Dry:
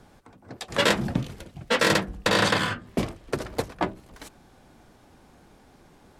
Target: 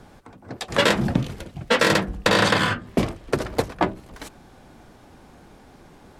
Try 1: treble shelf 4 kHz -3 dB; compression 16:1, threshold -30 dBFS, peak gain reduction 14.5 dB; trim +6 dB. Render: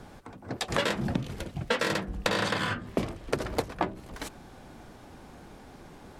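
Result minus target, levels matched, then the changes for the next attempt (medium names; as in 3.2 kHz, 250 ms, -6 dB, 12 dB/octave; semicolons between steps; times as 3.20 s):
compression: peak gain reduction +10.5 dB
change: compression 16:1, threshold -19 dBFS, peak gain reduction 4 dB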